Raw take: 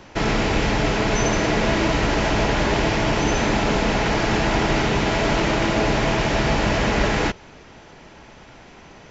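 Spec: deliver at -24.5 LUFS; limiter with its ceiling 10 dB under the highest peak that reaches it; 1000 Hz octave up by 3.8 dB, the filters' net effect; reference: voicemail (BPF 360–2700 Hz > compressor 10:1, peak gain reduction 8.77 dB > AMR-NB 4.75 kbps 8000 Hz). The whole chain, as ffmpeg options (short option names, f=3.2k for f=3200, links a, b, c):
-af "equalizer=f=1k:t=o:g=5,alimiter=limit=-16dB:level=0:latency=1,highpass=360,lowpass=2.7k,acompressor=threshold=-31dB:ratio=10,volume=15.5dB" -ar 8000 -c:a libopencore_amrnb -b:a 4750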